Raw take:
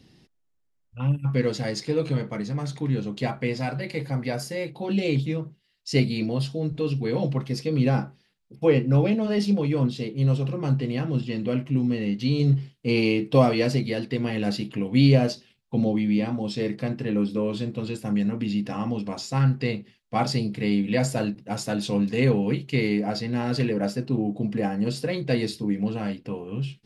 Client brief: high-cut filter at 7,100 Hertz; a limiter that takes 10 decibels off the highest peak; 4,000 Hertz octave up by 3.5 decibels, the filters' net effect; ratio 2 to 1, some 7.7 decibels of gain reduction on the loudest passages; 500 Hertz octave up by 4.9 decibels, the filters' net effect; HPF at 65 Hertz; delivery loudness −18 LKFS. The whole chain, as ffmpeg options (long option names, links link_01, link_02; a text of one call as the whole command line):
ffmpeg -i in.wav -af "highpass=65,lowpass=7100,equalizer=frequency=500:width_type=o:gain=5.5,equalizer=frequency=4000:width_type=o:gain=5,acompressor=threshold=-23dB:ratio=2,volume=11dB,alimiter=limit=-8.5dB:level=0:latency=1" out.wav